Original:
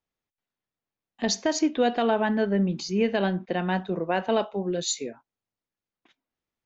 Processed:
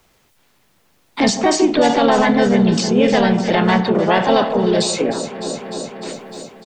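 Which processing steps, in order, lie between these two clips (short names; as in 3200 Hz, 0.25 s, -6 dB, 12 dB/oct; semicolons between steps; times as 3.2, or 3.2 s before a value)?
transient shaper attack -3 dB, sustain +7 dB; harmoniser -7 st -17 dB, +3 st -2 dB, +4 st -12 dB; on a send: echo with dull and thin repeats by turns 0.151 s, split 1200 Hz, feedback 72%, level -12 dB; on the sum: three-band squash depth 70%; gain +7.5 dB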